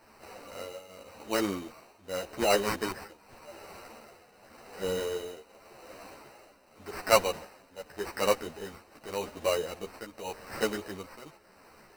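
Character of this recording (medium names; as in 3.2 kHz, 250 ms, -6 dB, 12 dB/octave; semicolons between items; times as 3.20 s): a quantiser's noise floor 10-bit, dither triangular; tremolo triangle 0.87 Hz, depth 85%; aliases and images of a low sample rate 3.4 kHz, jitter 0%; a shimmering, thickened sound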